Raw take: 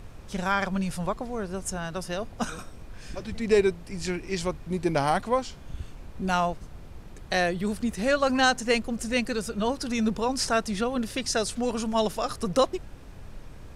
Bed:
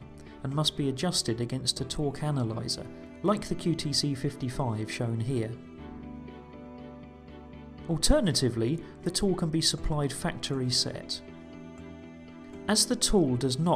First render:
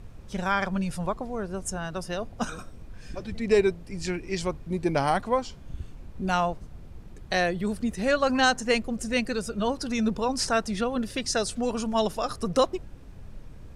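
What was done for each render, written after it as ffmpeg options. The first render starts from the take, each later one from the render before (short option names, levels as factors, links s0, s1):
-af "afftdn=nr=6:nf=-45"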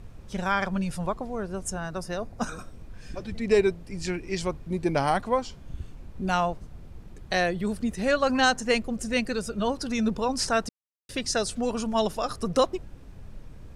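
-filter_complex "[0:a]asettb=1/sr,asplit=3[s0][s1][s2];[s0]atrim=end=1.804[s3];[s1]atrim=start=1.8:end=2.61,asetpts=PTS-STARTPTS,afade=t=in:d=0.004:c=qsin,afade=t=out:st=0.806:d=0.004:c=qsin,equalizer=f=3100:t=o:w=0.34:g=-9[s4];[s2]atrim=start=2.606[s5];[s3][s4]acrossfade=d=0.004:c1=hsin:c2=qsin[s6];[s6][s5]acrossfade=d=0.004:c1=qsin:c2=hsin,asplit=3[s7][s8][s9];[s7]atrim=end=10.69,asetpts=PTS-STARTPTS,afade=t=out:st=10.686:d=0.004:c=hsin[s10];[s8]atrim=start=10.69:end=11.09,asetpts=PTS-STARTPTS,volume=0[s11];[s9]atrim=start=11.09,asetpts=PTS-STARTPTS,afade=t=in:d=0.004:c=hsin[s12];[s10][s11][s12]concat=n=3:v=0:a=1"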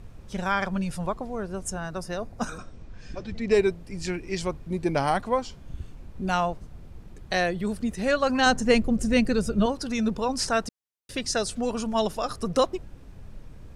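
-filter_complex "[0:a]asettb=1/sr,asplit=3[s0][s1][s2];[s0]atrim=end=2.584[s3];[s1]atrim=start=2.58:end=3.53,asetpts=PTS-STARTPTS,afade=t=in:d=0.004:c=qsin,afade=t=out:st=0.946:d=0.004:c=qsin,lowpass=f=7200:w=0.5412,lowpass=f=7200:w=1.3066[s4];[s2]atrim=start=3.526[s5];[s3][s4]acrossfade=d=0.004:c1=hsin:c2=qsin[s6];[s6][s5]acrossfade=d=0.004:c1=qsin:c2=hsin,asettb=1/sr,asplit=3[s7][s8][s9];[s7]atrim=end=8.464[s10];[s8]atrim=start=8.46:end=9.66,asetpts=PTS-STARTPTS,afade=t=in:d=0.004:c=qsin,afade=t=out:st=1.196:d=0.004:c=qsin,lowshelf=f=410:g=9.5[s11];[s9]atrim=start=9.656[s12];[s10][s11]acrossfade=d=0.004:c1=hsin:c2=qsin[s13];[s13][s12]acrossfade=d=0.004:c1=qsin:c2=hsin"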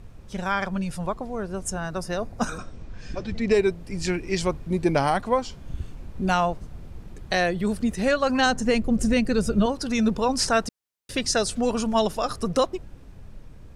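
-af "dynaudnorm=f=310:g=11:m=1.68,alimiter=limit=0.282:level=0:latency=1:release=335"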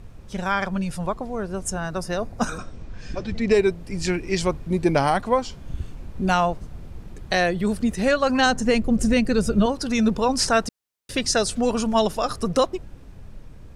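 -af "volume=1.26"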